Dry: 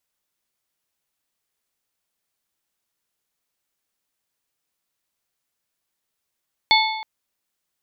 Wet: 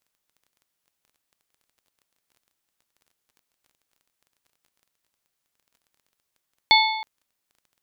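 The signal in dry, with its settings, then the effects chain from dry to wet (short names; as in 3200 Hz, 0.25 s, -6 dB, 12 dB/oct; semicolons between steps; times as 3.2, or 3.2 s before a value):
metal hit plate, length 0.32 s, lowest mode 876 Hz, modes 4, decay 1.13 s, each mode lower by 0.5 dB, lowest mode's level -15 dB
crackle 19/s -46 dBFS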